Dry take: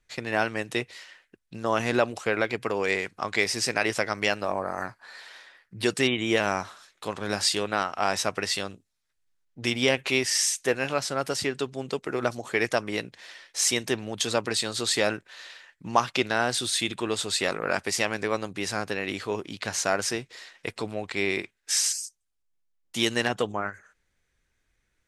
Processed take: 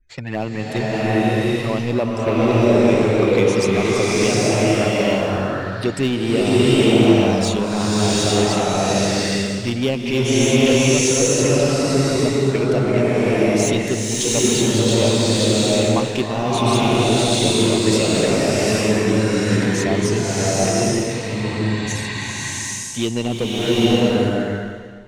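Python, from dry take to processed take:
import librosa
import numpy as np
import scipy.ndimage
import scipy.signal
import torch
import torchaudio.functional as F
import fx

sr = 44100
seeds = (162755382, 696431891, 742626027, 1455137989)

p1 = fx.spec_gate(x, sr, threshold_db=-25, keep='strong')
p2 = fx.env_flanger(p1, sr, rest_ms=3.2, full_db=-23.0)
p3 = fx.low_shelf(p2, sr, hz=330.0, db=12.0)
p4 = fx.hum_notches(p3, sr, base_hz=50, count=2)
p5 = 10.0 ** (-22.5 / 20.0) * (np.abs((p4 / 10.0 ** (-22.5 / 20.0) + 3.0) % 4.0 - 2.0) - 1.0)
p6 = p4 + (p5 * 10.0 ** (-7.0 / 20.0))
p7 = fx.spec_freeze(p6, sr, seeds[0], at_s=21.14, hold_s=0.75)
p8 = fx.rev_bloom(p7, sr, seeds[1], attack_ms=840, drr_db=-8.5)
y = p8 * 10.0 ** (-1.0 / 20.0)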